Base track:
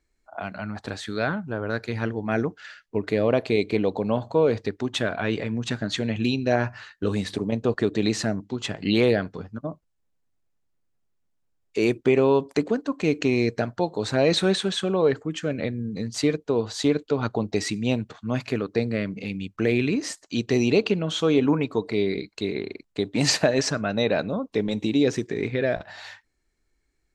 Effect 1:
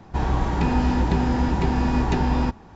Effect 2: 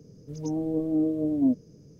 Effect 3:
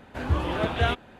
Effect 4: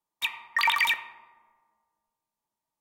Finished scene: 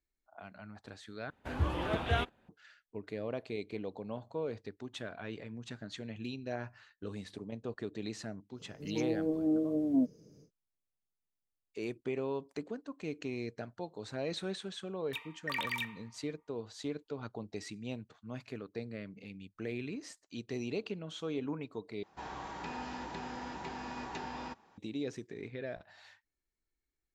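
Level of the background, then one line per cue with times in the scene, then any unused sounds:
base track -17 dB
1.3 replace with 3 -7 dB + gate -42 dBFS, range -12 dB
8.52 add 2 -3 dB, fades 0.10 s + low shelf 140 Hz -12 dB
14.91 add 4 -13 dB
22.03 replace with 1 -11.5 dB + HPF 840 Hz 6 dB/oct

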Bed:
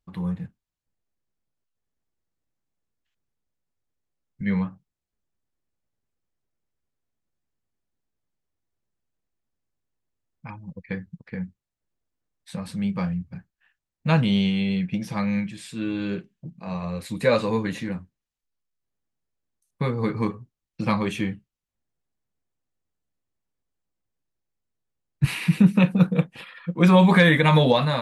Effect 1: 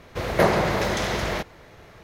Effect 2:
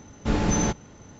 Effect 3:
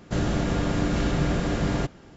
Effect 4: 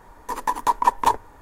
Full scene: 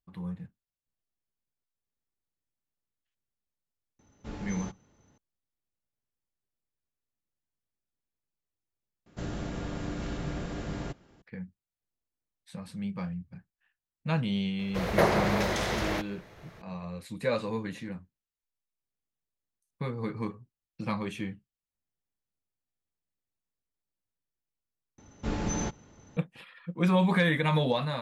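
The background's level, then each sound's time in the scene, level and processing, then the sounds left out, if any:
bed -9 dB
3.99 add 2 -17 dB
9.06 replace with 3 -11 dB
14.59 add 1 -4.5 dB
24.98 replace with 2 -8 dB
not used: 4

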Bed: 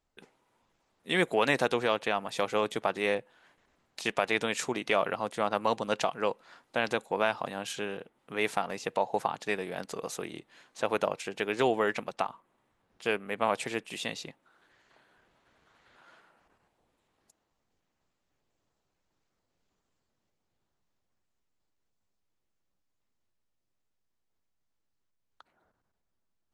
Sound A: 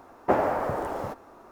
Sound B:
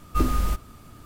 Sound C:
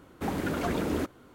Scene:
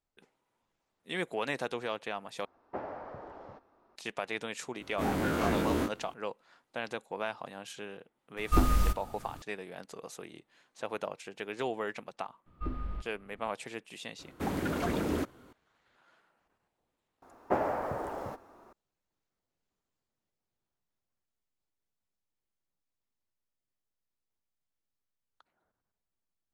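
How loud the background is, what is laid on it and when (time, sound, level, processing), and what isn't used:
bed -8 dB
2.45 replace with A -16.5 dB + LPF 5000 Hz 24 dB/oct
4.8 add C -4 dB + spectral dilation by 60 ms
8.37 add B -2.5 dB
12.46 add B -13.5 dB + air absorption 430 m
14.19 add C -2 dB
17.22 add A -6.5 dB

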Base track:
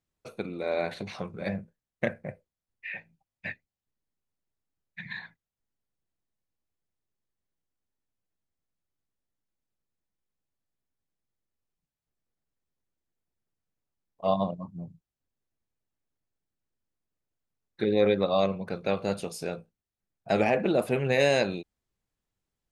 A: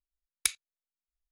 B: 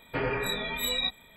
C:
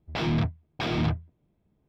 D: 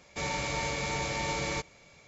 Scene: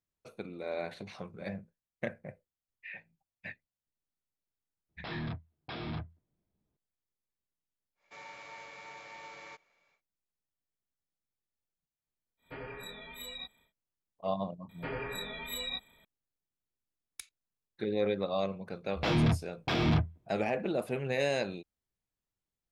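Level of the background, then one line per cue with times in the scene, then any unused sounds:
base track -7.5 dB
4.89 add C -10 dB + rippled Chebyshev low-pass 5300 Hz, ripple 3 dB
7.95 add D -12 dB, fades 0.10 s + band-pass 1400 Hz, Q 0.76
12.37 add B -14.5 dB, fades 0.10 s
14.69 add B -8.5 dB
16.74 add A -18 dB
18.88 add C -1 dB

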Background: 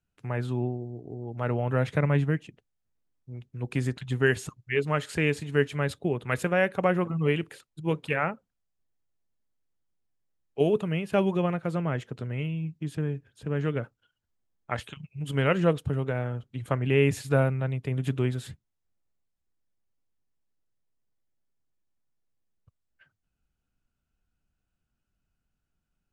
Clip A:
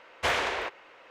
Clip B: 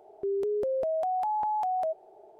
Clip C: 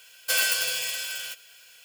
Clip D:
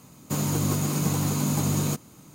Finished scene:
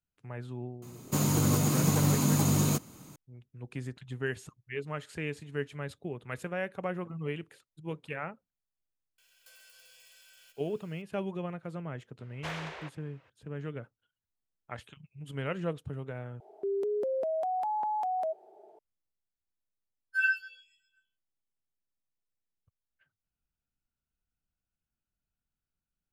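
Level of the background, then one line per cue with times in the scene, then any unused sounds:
background -10.5 dB
0.82 add D -1 dB
9.18 add C -15 dB + compressor 8:1, threshold -40 dBFS
12.2 add A -12.5 dB
16.4 replace with B -2 dB + Chebyshev high-pass 230 Hz
19.85 add C -6.5 dB + spectral expander 4:1

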